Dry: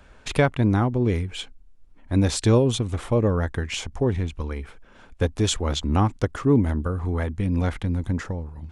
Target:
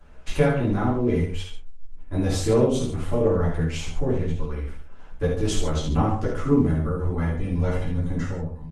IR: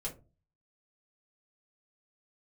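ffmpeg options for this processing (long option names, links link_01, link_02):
-filter_complex "[0:a]bandreject=frequency=3400:width=16,asplit=2[link_01][link_02];[link_02]adelay=13,volume=-5dB[link_03];[link_01][link_03]amix=inputs=2:normalize=0,aecho=1:1:49|71|135:0.473|0.473|0.266[link_04];[1:a]atrim=start_sample=2205,afade=type=out:start_time=0.15:duration=0.01,atrim=end_sample=7056[link_05];[link_04][link_05]afir=irnorm=-1:irlink=0,volume=-4dB" -ar 48000 -c:a libopus -b:a 20k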